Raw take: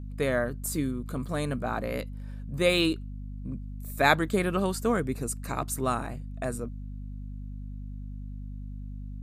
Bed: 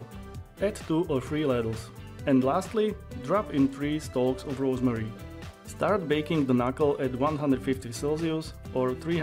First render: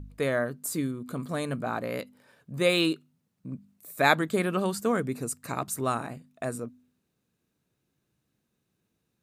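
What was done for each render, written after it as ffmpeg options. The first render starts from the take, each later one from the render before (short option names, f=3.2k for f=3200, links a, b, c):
-af "bandreject=f=50:t=h:w=4,bandreject=f=100:t=h:w=4,bandreject=f=150:t=h:w=4,bandreject=f=200:t=h:w=4,bandreject=f=250:t=h:w=4"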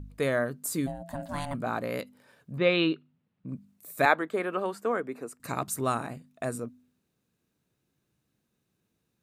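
-filter_complex "[0:a]asplit=3[a][b][c];[a]afade=t=out:st=0.86:d=0.02[d];[b]aeval=exprs='val(0)*sin(2*PI*420*n/s)':c=same,afade=t=in:st=0.86:d=0.02,afade=t=out:st=1.53:d=0.02[e];[c]afade=t=in:st=1.53:d=0.02[f];[d][e][f]amix=inputs=3:normalize=0,asplit=3[g][h][i];[g]afade=t=out:st=2.56:d=0.02[j];[h]lowpass=f=3.5k:w=0.5412,lowpass=f=3.5k:w=1.3066,afade=t=in:st=2.56:d=0.02,afade=t=out:st=3.47:d=0.02[k];[i]afade=t=in:st=3.47:d=0.02[l];[j][k][l]amix=inputs=3:normalize=0,asettb=1/sr,asplit=3[m][n][o];[m]atrim=end=4.054[p];[n]atrim=start=4.05:end=5.4,asetpts=PTS-STARTPTS,afade=t=in:d=0.004:c=qsin,afade=t=out:st=1.346:d=0.004:c=qsin,acrossover=split=290 2500:gain=0.1 1 0.2[q][r][s];[q][r][s]amix=inputs=3:normalize=0[t];[o]atrim=start=5.396[u];[p][t]acrossfade=d=0.004:c1=hsin:c2=qsin[v];[v][u]acrossfade=d=0.004:c1=qsin:c2=hsin"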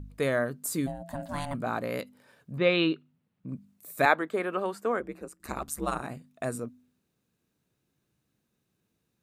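-filter_complex "[0:a]asplit=3[a][b][c];[a]afade=t=out:st=4.99:d=0.02[d];[b]aeval=exprs='val(0)*sin(2*PI*73*n/s)':c=same,afade=t=in:st=4.99:d=0.02,afade=t=out:st=6.01:d=0.02[e];[c]afade=t=in:st=6.01:d=0.02[f];[d][e][f]amix=inputs=3:normalize=0"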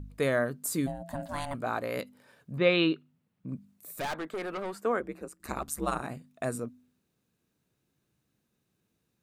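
-filter_complex "[0:a]asettb=1/sr,asplit=3[a][b][c];[a]atrim=end=1.274[d];[b]atrim=start=1.27:end=1.97,asetpts=PTS-STARTPTS,afade=t=in:d=0.004:c=qsin,afade=t=out:st=0.696:d=0.004:c=qsin,equalizer=f=180:w=1.5:g=-8[e];[c]atrim=start=1.966[f];[d][e]acrossfade=d=0.004:c1=hsin:c2=qsin[g];[g][f]acrossfade=d=0.004:c1=qsin:c2=hsin,asettb=1/sr,asplit=3[h][i][j];[h]atrim=end=3.954[k];[i]atrim=start=3.95:end=4.8,asetpts=PTS-STARTPTS,afade=t=in:d=0.004:c=qsin,afade=t=out:st=0.846:d=0.004:c=qsin,aeval=exprs='(tanh(35.5*val(0)+0.2)-tanh(0.2))/35.5':c=same[l];[j]atrim=start=4.796[m];[k][l]acrossfade=d=0.004:c1=hsin:c2=qsin[n];[n][m]acrossfade=d=0.004:c1=qsin:c2=hsin"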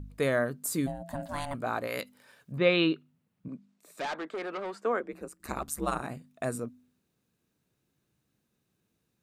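-filter_complex "[0:a]asettb=1/sr,asplit=3[a][b][c];[a]atrim=end=1.874[d];[b]atrim=start=1.87:end=2.52,asetpts=PTS-STARTPTS,afade=t=in:d=0.004:c=qsin,afade=t=out:st=0.646:d=0.004:c=qsin,tiltshelf=f=890:g=-4.5[e];[c]atrim=start=2.516[f];[d][e]acrossfade=d=0.004:c1=hsin:c2=qsin[g];[g][f]acrossfade=d=0.004:c1=qsin:c2=hsin,asettb=1/sr,asplit=3[h][i][j];[h]atrim=end=3.484[k];[i]atrim=start=3.48:end=5.13,asetpts=PTS-STARTPTS,afade=t=in:d=0.004:c=qsin,afade=t=out:st=1.646:d=0.004:c=qsin,acrossover=split=200 7600:gain=0.112 1 0.0891[l][m][n];[l][m][n]amix=inputs=3:normalize=0[o];[j]atrim=start=5.126[p];[k][o]acrossfade=d=0.004:c1=hsin:c2=qsin[q];[q][p]acrossfade=d=0.004:c1=qsin:c2=hsin"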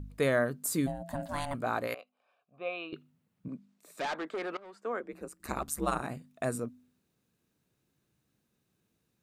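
-filter_complex "[0:a]asettb=1/sr,asplit=3[a][b][c];[a]atrim=end=1.944[d];[b]atrim=start=1.94:end=2.93,asetpts=PTS-STARTPTS,afade=t=in:d=0.004:c=qsin,afade=t=out:st=0.986:d=0.004:c=qsin,asplit=3[e][f][g];[e]bandpass=f=730:t=q:w=8,volume=0dB[h];[f]bandpass=f=1.09k:t=q:w=8,volume=-6dB[i];[g]bandpass=f=2.44k:t=q:w=8,volume=-9dB[j];[h][i][j]amix=inputs=3:normalize=0[k];[c]atrim=start=2.926[l];[d][k]acrossfade=d=0.004:c1=hsin:c2=qsin[m];[m][l]acrossfade=d=0.004:c1=qsin:c2=hsin,asplit=2[n][o];[n]atrim=end=4.57,asetpts=PTS-STARTPTS,afade=t=out:st=4.566:d=0.004:c=hsin:silence=0.112202[p];[o]atrim=start=4.57,asetpts=PTS-STARTPTS,afade=t=in:d=0.8:silence=0.112202[q];[p][q]concat=n=2:v=0:a=1"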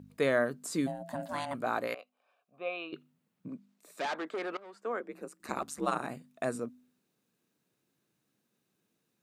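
-filter_complex "[0:a]acrossover=split=7900[a][b];[b]acompressor=threshold=-57dB:ratio=4:attack=1:release=60[c];[a][c]amix=inputs=2:normalize=0,highpass=180"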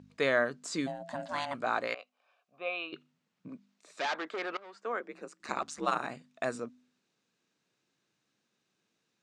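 -af "lowpass=f=6.9k:w=0.5412,lowpass=f=6.9k:w=1.3066,tiltshelf=f=660:g=-4.5"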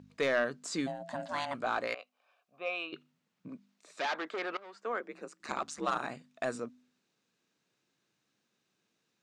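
-af "asoftclip=type=tanh:threshold=-20.5dB"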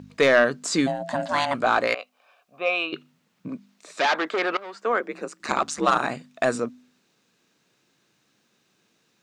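-af "volume=12dB"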